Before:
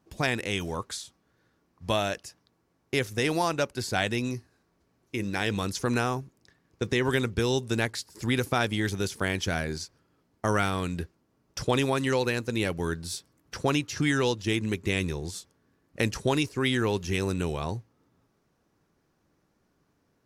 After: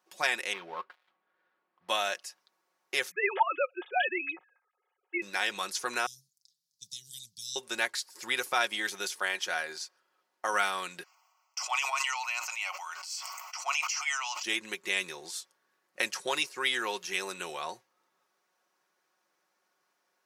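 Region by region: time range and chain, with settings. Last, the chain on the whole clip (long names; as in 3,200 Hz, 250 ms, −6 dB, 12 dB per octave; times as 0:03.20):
0:00.53–0:01.89: gap after every zero crossing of 0.13 ms + high-frequency loss of the air 390 metres
0:03.11–0:05.22: three sine waves on the formant tracks + comb filter 2.4 ms, depth 69%
0:06.06–0:07.56: elliptic band-stop filter 130–4,500 Hz, stop band 70 dB + flat-topped bell 1,900 Hz −10 dB 1.2 octaves
0:09.14–0:10.53: bass and treble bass −7 dB, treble −3 dB + notch filter 2,200 Hz, Q 27
0:11.03–0:14.43: elliptic high-pass filter 620 Hz, stop band 80 dB + phaser with its sweep stopped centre 2,500 Hz, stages 8 + level that may fall only so fast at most 24 dB per second
whole clip: high-pass filter 780 Hz 12 dB per octave; comb filter 5.5 ms, depth 51%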